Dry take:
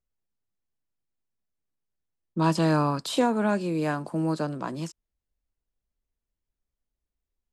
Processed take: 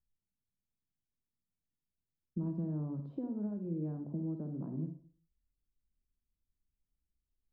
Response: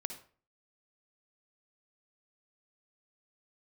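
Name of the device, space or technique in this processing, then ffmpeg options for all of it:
television next door: -filter_complex "[0:a]acompressor=threshold=-32dB:ratio=4,lowpass=260[link_01];[1:a]atrim=start_sample=2205[link_02];[link_01][link_02]afir=irnorm=-1:irlink=0,volume=1dB"

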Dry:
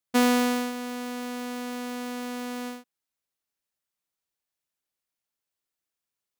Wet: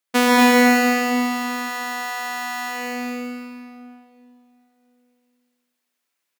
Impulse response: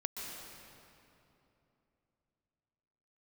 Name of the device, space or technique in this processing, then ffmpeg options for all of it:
stadium PA: -filter_complex "[0:a]highpass=230,equalizer=frequency=2100:width_type=o:width=1.5:gain=4,aecho=1:1:233.2|265.3:0.631|0.447[link_01];[1:a]atrim=start_sample=2205[link_02];[link_01][link_02]afir=irnorm=-1:irlink=0,volume=6dB"

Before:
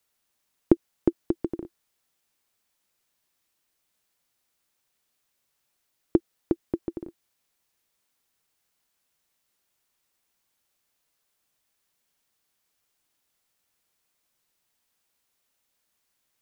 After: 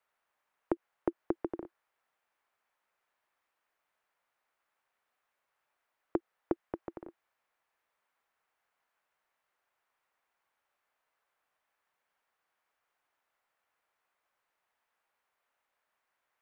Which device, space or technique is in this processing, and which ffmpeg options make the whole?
DJ mixer with the lows and highs turned down: -filter_complex "[0:a]asettb=1/sr,asplit=3[link_01][link_02][link_03];[link_01]atrim=end=6.534[link_04];[link_02]atrim=start=6.53:end=7.05,asetpts=PTS-STARTPTS,afade=type=in:duration=0.004:curve=qsin,afade=type=out:start_time=0.516:duration=0.004:curve=qsin,equalizer=frequency=340:width_type=o:width=0.79:gain=-5.5[link_05];[link_03]atrim=start=7.046[link_06];[link_04][link_05]acrossfade=duration=0.004:curve1=hsin:curve2=qsin[link_07];[link_07][link_06]acrossfade=duration=0.004:curve1=qsin:curve2=hsin,acrossover=split=540 2100:gain=0.141 1 0.0891[link_08][link_09][link_10];[link_08][link_09][link_10]amix=inputs=3:normalize=0,alimiter=limit=-21.5dB:level=0:latency=1:release=110,volume=5dB"

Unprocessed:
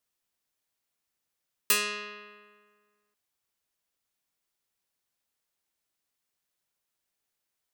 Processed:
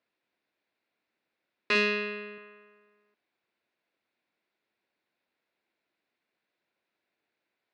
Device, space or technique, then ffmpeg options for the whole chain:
overdrive pedal into a guitar cabinet: -filter_complex "[0:a]asplit=2[link_01][link_02];[link_02]highpass=frequency=720:poles=1,volume=13dB,asoftclip=type=tanh:threshold=-9.5dB[link_03];[link_01][link_03]amix=inputs=2:normalize=0,lowpass=frequency=3200:poles=1,volume=-6dB,highpass=93,equalizer=frequency=220:width_type=q:width=4:gain=5,equalizer=frequency=330:width_type=q:width=4:gain=6,equalizer=frequency=850:width_type=q:width=4:gain=-5,equalizer=frequency=1200:width_type=q:width=4:gain=-9,equalizer=frequency=1800:width_type=q:width=4:gain=-4,equalizer=frequency=3100:width_type=q:width=4:gain=-10,lowpass=frequency=3500:width=0.5412,lowpass=frequency=3500:width=1.3066,asettb=1/sr,asplit=3[link_04][link_05][link_06];[link_04]atrim=end=1.754[link_07];[link_05]atrim=start=1.75:end=2.38,asetpts=PTS-STARTPTS,afade=type=in:duration=0.004:curve=qsin,afade=type=out:start_time=0.626:duration=0.004:curve=qsin,equalizer=frequency=125:width_type=o:width=1:gain=-9,equalizer=frequency=250:width_type=o:width=1:gain=11,equalizer=frequency=1000:width_type=o:width=1:gain=-4,equalizer=frequency=8000:width_type=o:width=1:gain=6[link_08];[link_06]atrim=start=2.376[link_09];[link_07][link_08]acrossfade=duration=0.004:curve1=hsin:curve2=qsin[link_10];[link_10][link_09]acrossfade=duration=0.004:curve1=qsin:curve2=hsin,volume=4.5dB"

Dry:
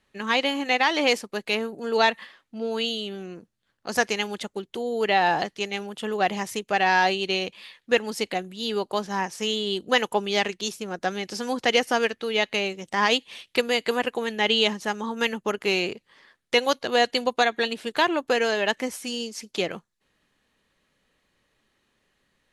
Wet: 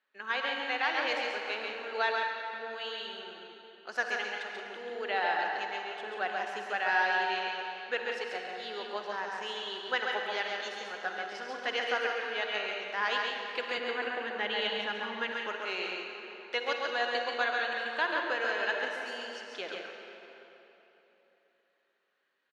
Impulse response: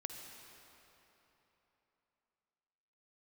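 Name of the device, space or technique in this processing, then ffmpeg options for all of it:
station announcement: -filter_complex "[0:a]highpass=470,lowpass=4300,equalizer=frequency=1500:width_type=o:width=0.4:gain=9,aecho=1:1:137|174.9:0.631|0.316[link_01];[1:a]atrim=start_sample=2205[link_02];[link_01][link_02]afir=irnorm=-1:irlink=0,asettb=1/sr,asplit=3[link_03][link_04][link_05];[link_03]atrim=end=13.784[link_06];[link_04]atrim=start=13.78:end=15.32,asetpts=PTS-STARTPTS,afade=type=in:duration=0.004:curve=qsin,afade=type=out:start_time=1.536:duration=0.004:curve=qsin,bass=frequency=250:gain=11,treble=frequency=4000:gain=-5[link_07];[link_05]atrim=start=15.316[link_08];[link_06][link_07]acrossfade=duration=0.004:curve1=hsin:curve2=qsin[link_09];[link_09][link_08]acrossfade=duration=0.004:curve1=qsin:curve2=hsin,volume=-8dB"

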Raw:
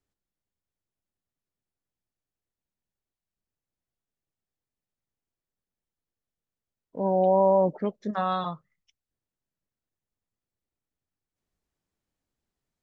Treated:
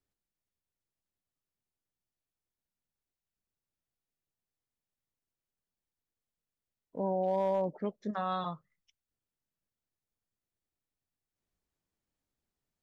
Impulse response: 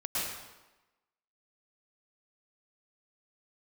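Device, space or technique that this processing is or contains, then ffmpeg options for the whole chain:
clipper into limiter: -af "asoftclip=type=hard:threshold=-13.5dB,alimiter=limit=-19.5dB:level=0:latency=1:release=443,volume=-3.5dB"

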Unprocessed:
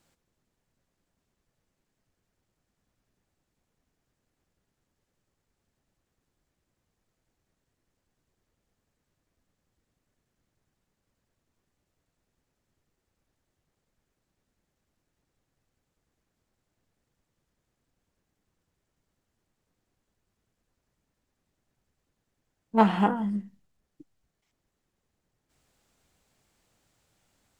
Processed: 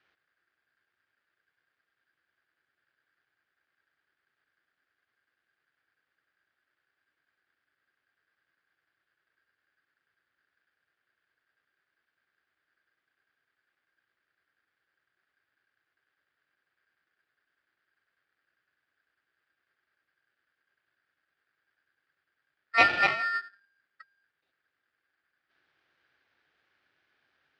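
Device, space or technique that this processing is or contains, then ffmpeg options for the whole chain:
ring modulator pedal into a guitar cabinet: -af "aeval=exprs='val(0)*sgn(sin(2*PI*1600*n/s))':channel_layout=same,highpass=79,equalizer=frequency=200:width_type=q:width=4:gain=-8,equalizer=frequency=350:width_type=q:width=4:gain=4,equalizer=frequency=970:width_type=q:width=4:gain=-6,lowpass=frequency=3700:width=0.5412,lowpass=frequency=3700:width=1.3066"

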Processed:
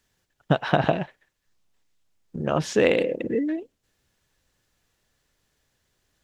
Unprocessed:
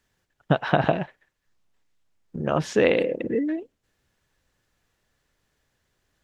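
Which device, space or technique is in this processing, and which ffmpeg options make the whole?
exciter from parts: -filter_complex "[0:a]asplit=2[link_01][link_02];[link_02]highpass=2400,asoftclip=type=tanh:threshold=-28dB,volume=-5dB[link_03];[link_01][link_03]amix=inputs=2:normalize=0"

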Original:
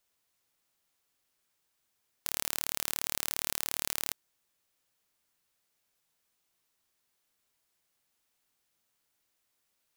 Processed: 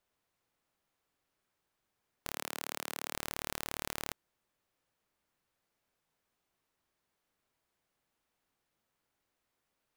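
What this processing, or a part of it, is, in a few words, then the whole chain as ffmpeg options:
through cloth: -filter_complex "[0:a]highshelf=frequency=2700:gain=-13,asettb=1/sr,asplit=3[link_01][link_02][link_03];[link_01]atrim=end=2.324[link_04];[link_02]atrim=start=2.32:end=3.14,asetpts=PTS-STARTPTS,afade=type=in:duration=0.004:curve=qsin,afade=type=out:start_time=0.816:duration=0.004:curve=qsin,highpass=200[link_05];[link_03]atrim=start=3.136[link_06];[link_04][link_05]acrossfade=duration=0.004:curve1=hsin:curve2=qsin[link_07];[link_07][link_06]acrossfade=duration=0.004:curve1=qsin:curve2=hsin,volume=3dB"

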